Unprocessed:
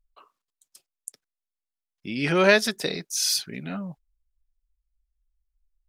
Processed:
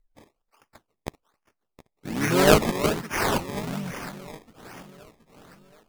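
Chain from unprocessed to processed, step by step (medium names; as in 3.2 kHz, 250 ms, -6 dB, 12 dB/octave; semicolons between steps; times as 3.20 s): harmony voices -5 st -4 dB, +3 st -13 dB, +4 st -17 dB; echo whose repeats swap between lows and highs 361 ms, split 2.1 kHz, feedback 66%, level -10.5 dB; decimation with a swept rate 21×, swing 100% 1.2 Hz; trim -1 dB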